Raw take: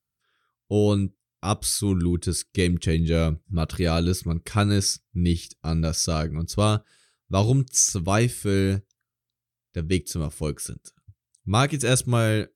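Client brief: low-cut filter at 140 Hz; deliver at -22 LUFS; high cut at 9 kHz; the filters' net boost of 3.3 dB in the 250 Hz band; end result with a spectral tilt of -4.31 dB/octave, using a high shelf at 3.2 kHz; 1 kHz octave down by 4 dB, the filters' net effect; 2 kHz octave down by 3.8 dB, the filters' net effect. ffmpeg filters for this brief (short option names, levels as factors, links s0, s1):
-af "highpass=140,lowpass=9000,equalizer=f=250:t=o:g=6,equalizer=f=1000:t=o:g=-5,equalizer=f=2000:t=o:g=-6,highshelf=f=3200:g=6,volume=1.12"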